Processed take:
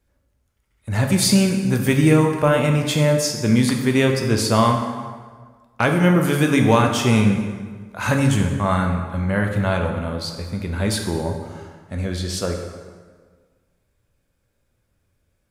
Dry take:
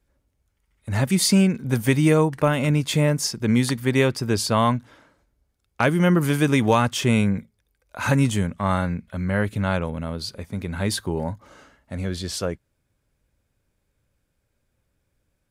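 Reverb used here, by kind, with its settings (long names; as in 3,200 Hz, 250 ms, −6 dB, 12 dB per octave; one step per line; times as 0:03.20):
dense smooth reverb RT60 1.6 s, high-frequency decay 0.7×, DRR 2.5 dB
level +1 dB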